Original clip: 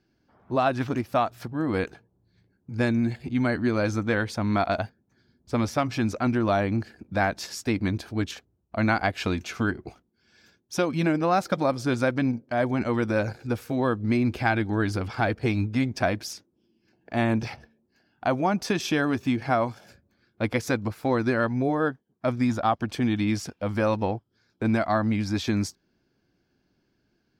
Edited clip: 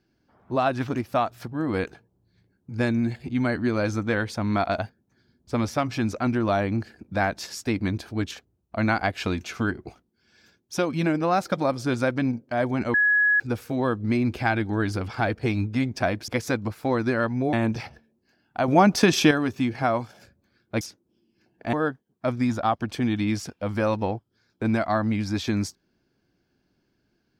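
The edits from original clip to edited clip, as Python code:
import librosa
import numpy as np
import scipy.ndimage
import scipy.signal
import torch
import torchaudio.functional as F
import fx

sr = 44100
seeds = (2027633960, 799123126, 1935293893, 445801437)

y = fx.edit(x, sr, fx.bleep(start_s=12.94, length_s=0.46, hz=1680.0, db=-16.5),
    fx.swap(start_s=16.28, length_s=0.92, other_s=20.48, other_length_s=1.25),
    fx.clip_gain(start_s=18.35, length_s=0.63, db=7.5), tone=tone)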